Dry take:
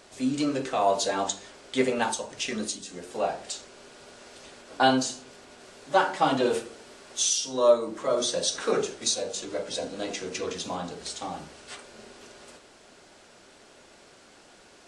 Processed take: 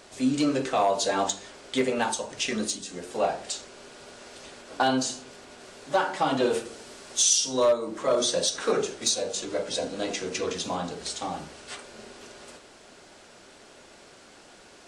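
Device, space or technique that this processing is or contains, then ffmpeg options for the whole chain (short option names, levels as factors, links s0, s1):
limiter into clipper: -filter_complex "[0:a]alimiter=limit=0.178:level=0:latency=1:release=298,asoftclip=type=hard:threshold=0.133,asettb=1/sr,asplit=3[s0][s1][s2];[s0]atrim=end=6.654[s3];[s1]atrim=start=6.65:end=7.65,asetpts=PTS-STARTPTS,afade=t=in:d=0.004:c=qsin,afade=t=out:st=0.996:d=0.004:c=qsin,bass=f=250:g=2,treble=f=4000:g=4[s4];[s2]atrim=start=7.646[s5];[s3][s4]acrossfade=d=0.004:c1=hsin:c2=qsin[s6];[s6][s5]acrossfade=d=0.004:c1=qsin:c2=hsin,volume=1.33"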